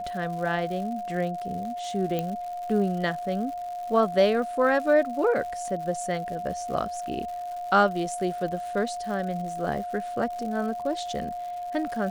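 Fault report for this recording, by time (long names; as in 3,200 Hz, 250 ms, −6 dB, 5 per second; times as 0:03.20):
surface crackle 190 per second −36 dBFS
whistle 710 Hz −31 dBFS
0:02.19: click −15 dBFS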